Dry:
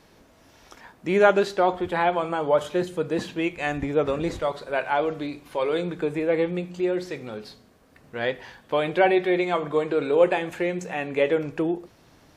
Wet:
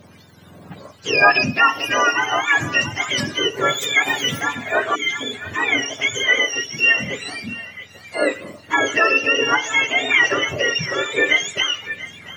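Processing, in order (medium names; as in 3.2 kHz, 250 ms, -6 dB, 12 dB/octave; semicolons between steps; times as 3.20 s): spectrum inverted on a logarithmic axis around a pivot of 1 kHz; in parallel at +0.5 dB: peak limiter -18 dBFS, peak gain reduction 10.5 dB; 4.95–5.21 s: on the sum: spectral selection erased 450–2000 Hz; 8.16–8.78 s: word length cut 12-bit, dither none; on a send: band-passed feedback delay 687 ms, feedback 44%, band-pass 1.7 kHz, level -13 dB; on the sum: sweeping bell 1.7 Hz 590–6700 Hz +7 dB; trim +1.5 dB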